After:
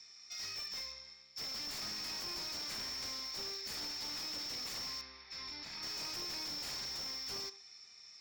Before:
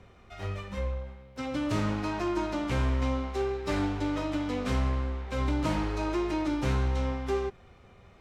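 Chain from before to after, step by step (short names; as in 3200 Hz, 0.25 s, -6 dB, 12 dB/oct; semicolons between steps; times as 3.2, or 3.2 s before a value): band-pass 5400 Hz, Q 16; sine folder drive 18 dB, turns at -41.5 dBFS; 5.01–5.83 air absorption 220 m; reverb RT60 0.45 s, pre-delay 3 ms, DRR 11.5 dB; slew limiter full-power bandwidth 28 Hz; gain +4.5 dB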